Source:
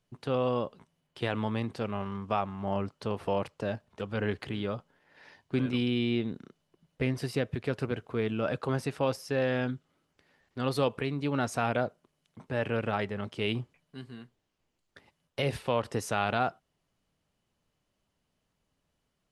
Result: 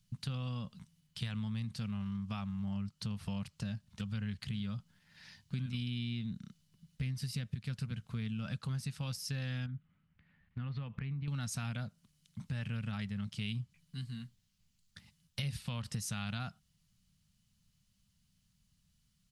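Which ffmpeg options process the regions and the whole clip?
ffmpeg -i in.wav -filter_complex "[0:a]asettb=1/sr,asplit=3[link_01][link_02][link_03];[link_01]atrim=end=9.664[link_04];[link_02]atrim=start=9.66:end=11.28,asetpts=PTS-STARTPTS,afade=type=in:duration=0.004:curve=qsin,afade=type=out:start_time=1.616:duration=0.004:curve=qsin,lowpass=frequency=2400:width=0.5412,lowpass=frequency=2400:width=1.3066,acompressor=threshold=-35dB:ratio=2.5:attack=3.2:release=140:knee=1:detection=peak[link_05];[link_03]atrim=start=11.276[link_06];[link_04][link_05]acrossfade=duration=0.004:curve1=hsin:curve2=qsin[link_07];[link_07][link_06]acrossfade=duration=0.004:curve1=qsin:curve2=hsin,firequalizer=gain_entry='entry(200,0);entry(320,-27);entry(1300,-13);entry(4300,0)':delay=0.05:min_phase=1,acompressor=threshold=-44dB:ratio=4,volume=7.5dB" out.wav

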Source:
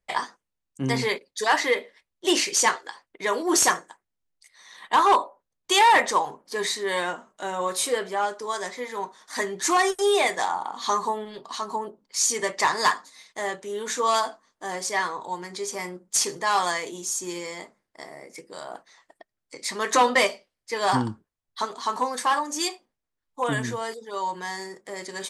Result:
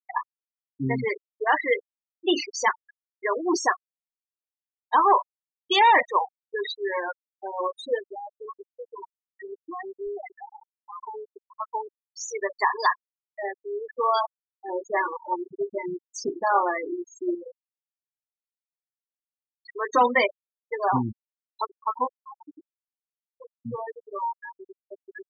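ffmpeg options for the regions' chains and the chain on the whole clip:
ffmpeg -i in.wav -filter_complex "[0:a]asettb=1/sr,asplit=3[link_01][link_02][link_03];[link_01]atrim=end=7.994[link_04];[link_02]atrim=start=7.99:end=11.15,asetpts=PTS-STARTPTS,afade=type=in:duration=0.004:curve=qsin,afade=type=out:start_time=3.156:duration=0.004:curve=qsin,acompressor=threshold=-30dB:ratio=3:attack=3.2:release=140:knee=1:detection=peak,aeval=exprs='clip(val(0),-1,0.0211)':channel_layout=same[link_05];[link_03]atrim=start=11.146[link_06];[link_04][link_05]acrossfade=duration=0.004:curve1=hsin:curve2=qsin[link_07];[link_07][link_06]acrossfade=duration=0.004:curve1=qsin:curve2=hsin,asettb=1/sr,asplit=3[link_08][link_09][link_10];[link_08]atrim=end=14.684[link_11];[link_09]atrim=start=14.68:end=17.35,asetpts=PTS-STARTPTS,afade=type=in:duration=0.004:curve=qsin,afade=type=out:start_time=2.666:duration=0.004:curve=qsin,equalizer=frequency=260:width=0.4:gain=9.5,aecho=1:1:3.4:0.41,atrim=end_sample=117747,tremolo=f=250:d=0.462[link_12];[link_10]atrim=start=17.346[link_13];[link_11][link_12]acrossfade=duration=0.004:curve1=hsin:curve2=qsin[link_14];[link_14][link_13]acrossfade=duration=0.004:curve1=qsin:curve2=hsin,asettb=1/sr,asplit=3[link_15][link_16][link_17];[link_15]atrim=end=22.074[link_18];[link_16]atrim=start=22.07:end=23.66,asetpts=PTS-STARTPTS,afade=type=in:duration=0.004:curve=qsin,afade=type=out:start_time=1.586:duration=0.004:curve=qsin,acompressor=threshold=-32dB:ratio=8:attack=3.2:release=140:knee=1:detection=peak,bandpass=frequency=470:width_type=q:width=0.52[link_19];[link_17]atrim=start=23.656[link_20];[link_18][link_19]acrossfade=duration=0.004:curve1=hsin:curve2=qsin[link_21];[link_21][link_20]acrossfade=duration=0.004:curve1=qsin:curve2=hsin,afftfilt=real='re*gte(hypot(re,im),0.158)':imag='im*gte(hypot(re,im),0.158)':win_size=1024:overlap=0.75,lowpass=frequency=5000:width=0.5412,lowpass=frequency=5000:width=1.3066" out.wav

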